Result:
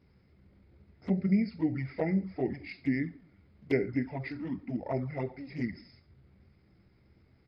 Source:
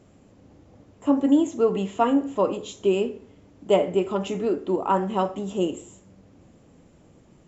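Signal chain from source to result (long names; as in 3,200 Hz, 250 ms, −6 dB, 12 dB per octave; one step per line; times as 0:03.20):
thirty-one-band graphic EQ 125 Hz +11 dB, 2,000 Hz +4 dB, 3,150 Hz +11 dB
flanger swept by the level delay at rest 11.8 ms, full sweep at −17 dBFS
pitch shifter −6.5 semitones
level −7.5 dB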